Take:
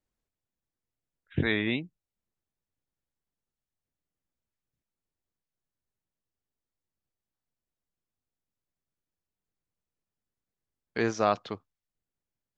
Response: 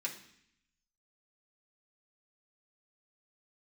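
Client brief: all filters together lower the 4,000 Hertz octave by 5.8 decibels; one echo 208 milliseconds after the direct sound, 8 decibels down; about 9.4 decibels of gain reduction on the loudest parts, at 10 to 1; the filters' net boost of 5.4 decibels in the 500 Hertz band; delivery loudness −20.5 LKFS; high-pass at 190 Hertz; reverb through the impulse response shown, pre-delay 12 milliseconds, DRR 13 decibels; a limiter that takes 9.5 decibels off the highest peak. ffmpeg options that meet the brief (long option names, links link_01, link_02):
-filter_complex "[0:a]highpass=190,equalizer=frequency=500:width_type=o:gain=7,equalizer=frequency=4000:width_type=o:gain=-7,acompressor=threshold=-25dB:ratio=10,alimiter=level_in=1dB:limit=-24dB:level=0:latency=1,volume=-1dB,aecho=1:1:208:0.398,asplit=2[link_01][link_02];[1:a]atrim=start_sample=2205,adelay=12[link_03];[link_02][link_03]afir=irnorm=-1:irlink=0,volume=-14.5dB[link_04];[link_01][link_04]amix=inputs=2:normalize=0,volume=17dB"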